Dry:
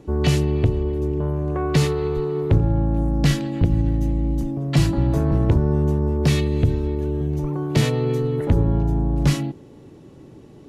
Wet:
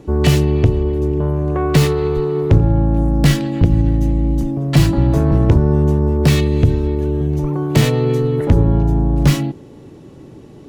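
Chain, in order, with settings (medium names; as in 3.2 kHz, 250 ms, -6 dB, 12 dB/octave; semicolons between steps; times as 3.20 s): tracing distortion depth 0.082 ms; trim +5.5 dB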